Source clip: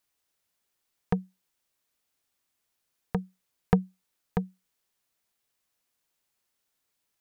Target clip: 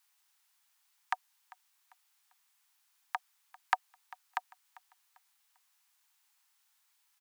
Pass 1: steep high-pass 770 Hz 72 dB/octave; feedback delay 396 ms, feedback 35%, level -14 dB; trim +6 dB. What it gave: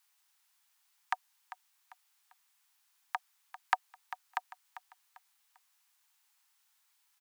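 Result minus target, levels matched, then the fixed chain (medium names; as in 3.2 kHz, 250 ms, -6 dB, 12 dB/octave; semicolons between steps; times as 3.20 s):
echo-to-direct +7.5 dB
steep high-pass 770 Hz 72 dB/octave; feedback delay 396 ms, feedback 35%, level -21.5 dB; trim +6 dB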